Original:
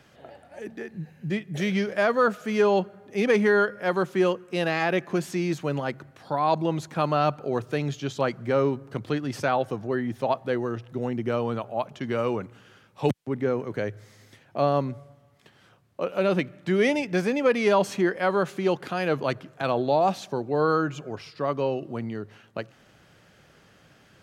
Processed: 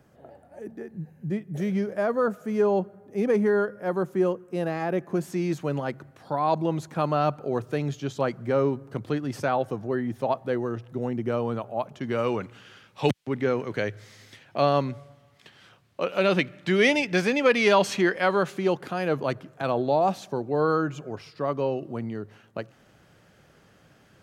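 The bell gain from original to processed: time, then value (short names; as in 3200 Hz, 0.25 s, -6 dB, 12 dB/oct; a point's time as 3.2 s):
bell 3300 Hz 2.4 oct
5.04 s -14.5 dB
5.46 s -4.5 dB
11.98 s -4.5 dB
12.44 s +7 dB
18.08 s +7 dB
18.87 s -4 dB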